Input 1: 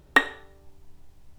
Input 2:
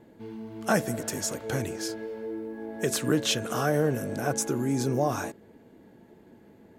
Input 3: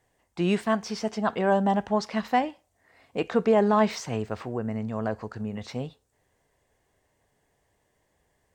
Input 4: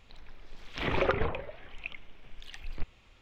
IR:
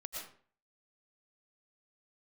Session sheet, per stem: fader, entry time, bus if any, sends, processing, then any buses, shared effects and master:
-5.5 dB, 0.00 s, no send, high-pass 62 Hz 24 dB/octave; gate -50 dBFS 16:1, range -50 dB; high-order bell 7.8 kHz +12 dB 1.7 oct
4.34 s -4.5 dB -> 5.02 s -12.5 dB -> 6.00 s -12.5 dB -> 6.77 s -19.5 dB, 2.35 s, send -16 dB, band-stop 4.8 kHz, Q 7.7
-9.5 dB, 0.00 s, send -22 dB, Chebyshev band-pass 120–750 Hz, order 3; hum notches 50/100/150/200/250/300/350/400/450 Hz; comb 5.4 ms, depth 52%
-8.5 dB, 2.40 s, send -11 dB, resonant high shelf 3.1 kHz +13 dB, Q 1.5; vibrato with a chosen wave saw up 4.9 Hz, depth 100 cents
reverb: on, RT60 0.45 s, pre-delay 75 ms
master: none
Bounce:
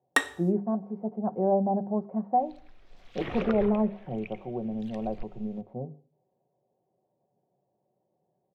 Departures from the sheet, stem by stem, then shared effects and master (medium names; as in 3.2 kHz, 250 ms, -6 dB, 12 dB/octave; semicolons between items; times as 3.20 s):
stem 2: muted; stem 3 -9.5 dB -> -2.5 dB; stem 4: missing resonant high shelf 3.1 kHz +13 dB, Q 1.5